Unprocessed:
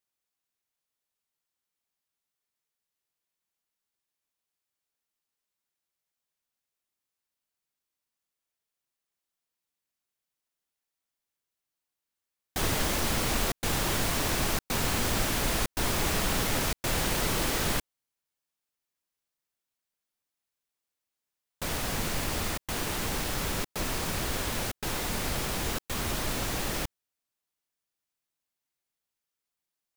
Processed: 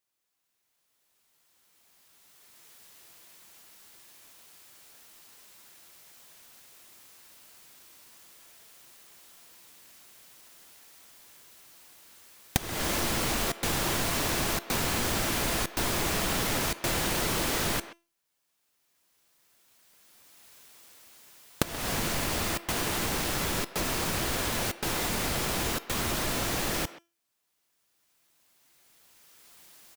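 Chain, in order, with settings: recorder AGC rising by 11 dB/s; bass shelf 61 Hz -7 dB; feedback comb 340 Hz, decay 0.34 s, harmonics all, mix 50%; speakerphone echo 130 ms, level -16 dB; compression, threshold -33 dBFS, peak gain reduction 17.5 dB; trim +8.5 dB

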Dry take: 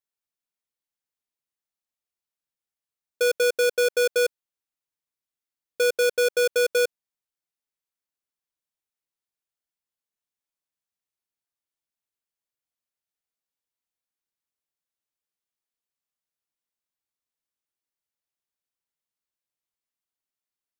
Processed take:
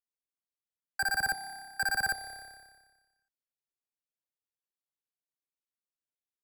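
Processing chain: octave divider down 1 oct, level +3 dB; echo with a slow build-up 96 ms, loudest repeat 5, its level -18 dB; wide varispeed 3.23×; trim -8.5 dB

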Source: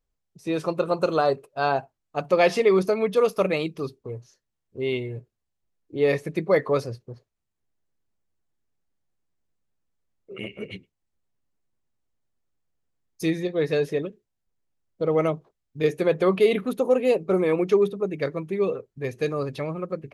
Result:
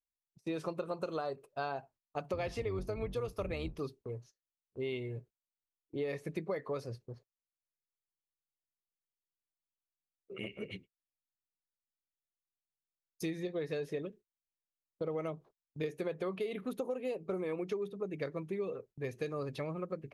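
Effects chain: 2.33–3.79 s: octave divider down 2 oct, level +2 dB; gate -47 dBFS, range -19 dB; compression 12:1, threshold -26 dBFS, peak gain reduction 14 dB; trim -7 dB

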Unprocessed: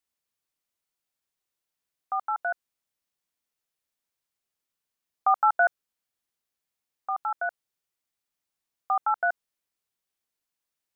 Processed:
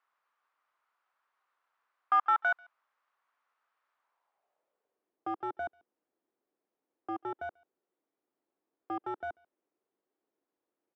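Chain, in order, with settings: overdrive pedal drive 30 dB, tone 1.2 kHz, clips at -12.5 dBFS; speakerphone echo 140 ms, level -25 dB; band-pass sweep 1.2 kHz -> 330 Hz, 3.95–5.16 s

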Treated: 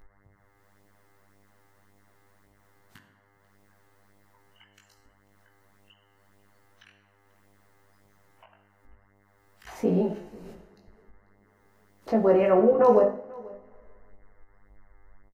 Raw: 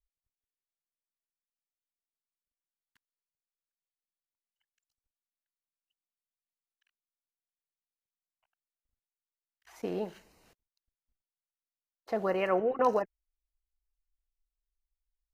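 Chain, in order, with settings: de-hum 50.98 Hz, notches 36; spectral noise reduction 15 dB; tilt shelf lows +8 dB, about 900 Hz; two-slope reverb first 0.54 s, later 1.8 s, from -27 dB, DRR 6.5 dB; in parallel at 0 dB: upward compressor, threshold -30 dBFS; on the sum: mains buzz 100 Hz, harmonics 21, -64 dBFS -2 dB/octave; chorus 1.8 Hz, delay 17.5 ms, depth 2.2 ms; on a send: delay 491 ms -23 dB; on the sum: endings held to a fixed fall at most 340 dB/s; trim +1.5 dB

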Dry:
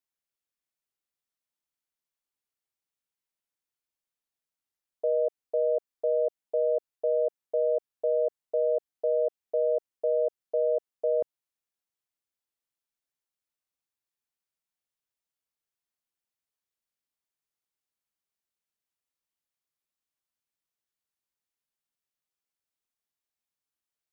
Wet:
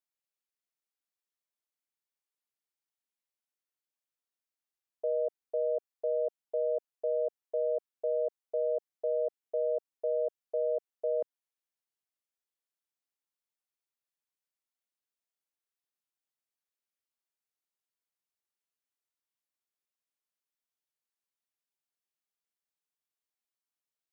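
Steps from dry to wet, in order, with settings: high-pass 240 Hz 12 dB/octave; trim -4.5 dB

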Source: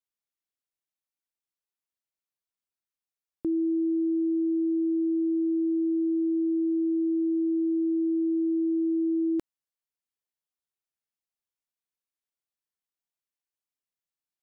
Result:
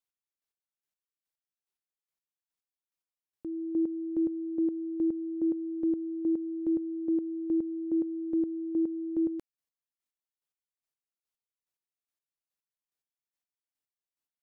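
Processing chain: square tremolo 2.4 Hz, depth 65%, duty 25%

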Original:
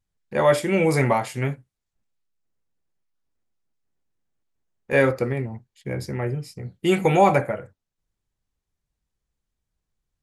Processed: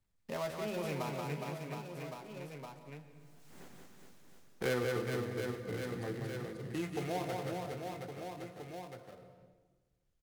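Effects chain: dead-time distortion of 0.17 ms; Doppler pass-by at 3.63 s, 31 m/s, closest 1.9 m; reverse bouncing-ball echo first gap 180 ms, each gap 1.3×, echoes 5; on a send at -13 dB: reverberation RT60 1.2 s, pre-delay 101 ms; on the sum: three bands compressed up and down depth 70%; trim +14.5 dB

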